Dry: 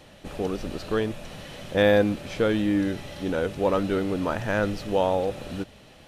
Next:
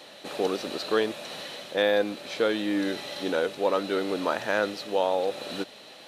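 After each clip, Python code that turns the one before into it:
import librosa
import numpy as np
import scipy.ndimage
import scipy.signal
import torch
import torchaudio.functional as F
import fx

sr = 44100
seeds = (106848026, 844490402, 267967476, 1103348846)

y = scipy.signal.sosfilt(scipy.signal.butter(2, 350.0, 'highpass', fs=sr, output='sos'), x)
y = fx.peak_eq(y, sr, hz=4000.0, db=9.0, octaves=0.3)
y = fx.rider(y, sr, range_db=4, speed_s=0.5)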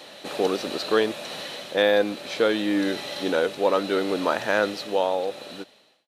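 y = fx.fade_out_tail(x, sr, length_s=1.27)
y = F.gain(torch.from_numpy(y), 3.5).numpy()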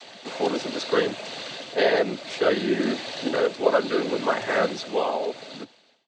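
y = fx.noise_vocoder(x, sr, seeds[0], bands=16)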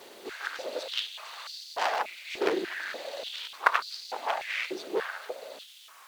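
y = fx.dmg_noise_colour(x, sr, seeds[1], colour='pink', level_db=-43.0)
y = fx.cheby_harmonics(y, sr, harmonics=(3, 6), levels_db=(-7, -26), full_scale_db=-6.0)
y = fx.filter_held_highpass(y, sr, hz=3.4, low_hz=370.0, high_hz=4700.0)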